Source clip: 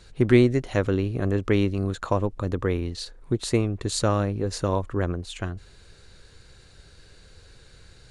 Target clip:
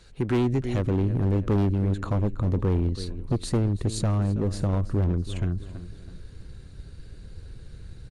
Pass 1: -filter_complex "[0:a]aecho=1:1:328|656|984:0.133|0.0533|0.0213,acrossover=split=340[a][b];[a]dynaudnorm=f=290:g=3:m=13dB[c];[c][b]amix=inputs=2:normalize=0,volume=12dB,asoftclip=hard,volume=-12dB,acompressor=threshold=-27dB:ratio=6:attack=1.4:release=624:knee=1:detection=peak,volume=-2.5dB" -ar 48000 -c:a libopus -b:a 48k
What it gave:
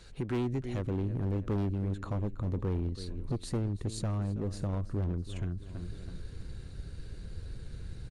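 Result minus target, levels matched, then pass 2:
compressor: peak gain reduction +8.5 dB
-filter_complex "[0:a]aecho=1:1:328|656|984:0.133|0.0533|0.0213,acrossover=split=340[a][b];[a]dynaudnorm=f=290:g=3:m=13dB[c];[c][b]amix=inputs=2:normalize=0,volume=12dB,asoftclip=hard,volume=-12dB,acompressor=threshold=-17dB:ratio=6:attack=1.4:release=624:knee=1:detection=peak,volume=-2.5dB" -ar 48000 -c:a libopus -b:a 48k

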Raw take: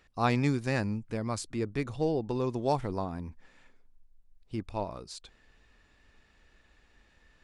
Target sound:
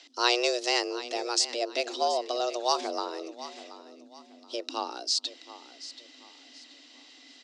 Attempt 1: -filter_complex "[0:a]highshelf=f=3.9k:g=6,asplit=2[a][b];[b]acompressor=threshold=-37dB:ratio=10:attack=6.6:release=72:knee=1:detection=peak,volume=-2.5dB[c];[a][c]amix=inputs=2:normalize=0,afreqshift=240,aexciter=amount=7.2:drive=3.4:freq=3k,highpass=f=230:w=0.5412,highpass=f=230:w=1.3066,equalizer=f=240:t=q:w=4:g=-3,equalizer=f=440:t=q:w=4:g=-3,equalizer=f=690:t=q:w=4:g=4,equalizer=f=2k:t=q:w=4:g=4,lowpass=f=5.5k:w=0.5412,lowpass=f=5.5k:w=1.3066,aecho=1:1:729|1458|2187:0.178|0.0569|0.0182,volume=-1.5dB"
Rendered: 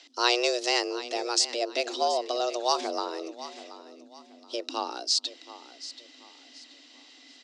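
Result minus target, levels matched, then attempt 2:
compressor: peak gain reduction -7.5 dB
-filter_complex "[0:a]highshelf=f=3.9k:g=6,asplit=2[a][b];[b]acompressor=threshold=-45.5dB:ratio=10:attack=6.6:release=72:knee=1:detection=peak,volume=-2.5dB[c];[a][c]amix=inputs=2:normalize=0,afreqshift=240,aexciter=amount=7.2:drive=3.4:freq=3k,highpass=f=230:w=0.5412,highpass=f=230:w=1.3066,equalizer=f=240:t=q:w=4:g=-3,equalizer=f=440:t=q:w=4:g=-3,equalizer=f=690:t=q:w=4:g=4,equalizer=f=2k:t=q:w=4:g=4,lowpass=f=5.5k:w=0.5412,lowpass=f=5.5k:w=1.3066,aecho=1:1:729|1458|2187:0.178|0.0569|0.0182,volume=-1.5dB"

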